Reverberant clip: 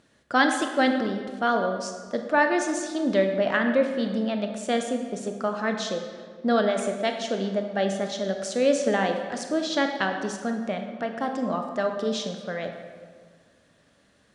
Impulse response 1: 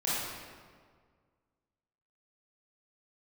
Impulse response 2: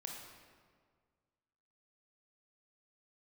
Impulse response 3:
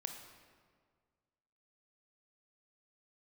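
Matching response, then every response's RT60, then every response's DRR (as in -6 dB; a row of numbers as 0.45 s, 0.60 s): 3; 1.8 s, 1.8 s, 1.8 s; -9.5 dB, 0.0 dB, 4.5 dB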